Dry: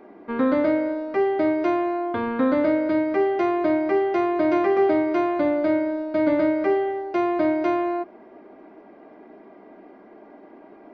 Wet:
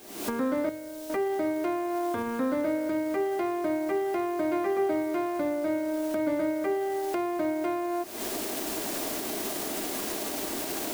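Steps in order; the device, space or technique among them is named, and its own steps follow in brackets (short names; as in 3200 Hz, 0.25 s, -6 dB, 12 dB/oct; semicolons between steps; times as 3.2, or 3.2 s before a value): cheap recorder with automatic gain (white noise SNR 23 dB; recorder AGC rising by 69 dB/s); 0.69–1.1 ten-band EQ 250 Hz -10 dB, 500 Hz -6 dB, 1000 Hz -10 dB, 2000 Hz -7 dB; gain -7.5 dB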